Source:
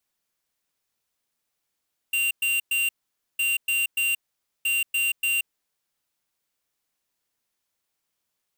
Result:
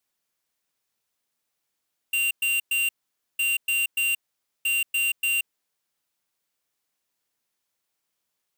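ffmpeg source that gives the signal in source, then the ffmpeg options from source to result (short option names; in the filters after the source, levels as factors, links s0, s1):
-f lavfi -i "aevalsrc='0.0668*(2*lt(mod(2770*t,1),0.5)-1)*clip(min(mod(mod(t,1.26),0.29),0.18-mod(mod(t,1.26),0.29))/0.005,0,1)*lt(mod(t,1.26),0.87)':d=3.78:s=44100"
-af "lowshelf=f=78:g=-7"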